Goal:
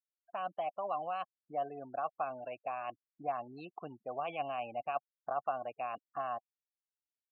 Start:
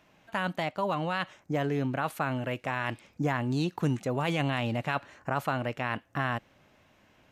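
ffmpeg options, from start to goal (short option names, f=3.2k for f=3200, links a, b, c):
-filter_complex "[0:a]afftfilt=real='re*gte(hypot(re,im),0.0251)':imag='im*gte(hypot(re,im),0.0251)':win_size=1024:overlap=0.75,aeval=exprs='0.178*(cos(1*acos(clip(val(0)/0.178,-1,1)))-cos(1*PI/2))+0.00112*(cos(3*acos(clip(val(0)/0.178,-1,1)))-cos(3*PI/2))+0.00112*(cos(4*acos(clip(val(0)/0.178,-1,1)))-cos(4*PI/2))':c=same,asplit=3[a][b][c];[a]bandpass=f=730:t=q:w=8,volume=0dB[d];[b]bandpass=f=1.09k:t=q:w=8,volume=-6dB[e];[c]bandpass=f=2.44k:t=q:w=8,volume=-9dB[f];[d][e][f]amix=inputs=3:normalize=0,volume=2.5dB"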